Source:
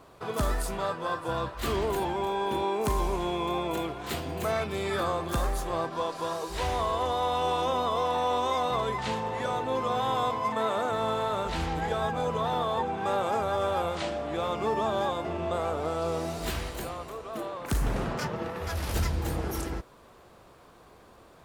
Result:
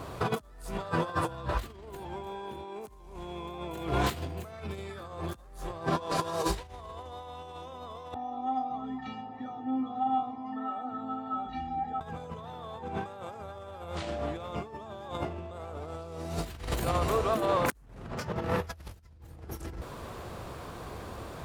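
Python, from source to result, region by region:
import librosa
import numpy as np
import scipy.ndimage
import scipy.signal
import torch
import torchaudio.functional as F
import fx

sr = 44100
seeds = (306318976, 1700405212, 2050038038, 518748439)

y = fx.chain(x, sr, fx.envelope_sharpen(power=1.5),
    fx.lowpass(hz=4300.0, slope=12),
    fx.comb_fb(f0_hz=260.0, decay_s=0.29, harmonics='odd', damping=0.0, mix_pct=100), at=(8.14, 12.01))
y = fx.peak_eq(y, sr, hz=86.0, db=8.0, octaves=1.7)
y = fx.over_compress(y, sr, threshold_db=-36.0, ratio=-0.5)
y = F.gain(torch.from_numpy(y), 2.5).numpy()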